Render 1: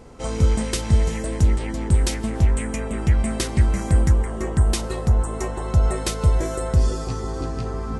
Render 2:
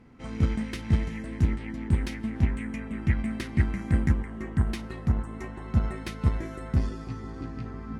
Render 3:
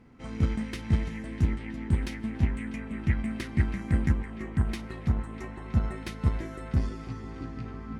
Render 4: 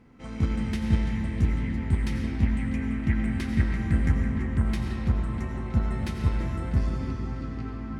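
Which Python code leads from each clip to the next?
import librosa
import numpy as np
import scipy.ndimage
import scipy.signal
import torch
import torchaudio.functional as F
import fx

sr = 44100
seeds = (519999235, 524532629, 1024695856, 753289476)

y1 = fx.cheby_harmonics(x, sr, harmonics=(3, 6), levels_db=(-15, -44), full_scale_db=-6.5)
y1 = fx.graphic_eq_10(y1, sr, hz=(125, 250, 500, 2000, 8000), db=(5, 10, -6, 9, -11))
y1 = y1 * librosa.db_to_amplitude(-7.0)
y2 = fx.echo_banded(y1, sr, ms=323, feedback_pct=84, hz=2500.0, wet_db=-14)
y2 = y2 * librosa.db_to_amplitude(-1.5)
y3 = fx.rev_freeverb(y2, sr, rt60_s=2.5, hf_ratio=0.6, predelay_ms=50, drr_db=1.5)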